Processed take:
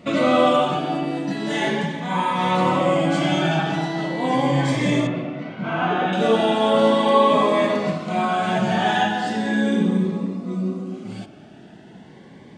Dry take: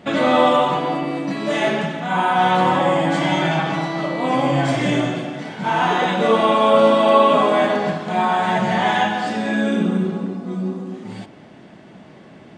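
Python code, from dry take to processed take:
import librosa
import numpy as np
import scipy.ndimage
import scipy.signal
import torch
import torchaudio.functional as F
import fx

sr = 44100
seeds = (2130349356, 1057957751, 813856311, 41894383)

y = fx.lowpass(x, sr, hz=2500.0, slope=12, at=(5.07, 6.13))
y = fx.notch_cascade(y, sr, direction='rising', hz=0.38)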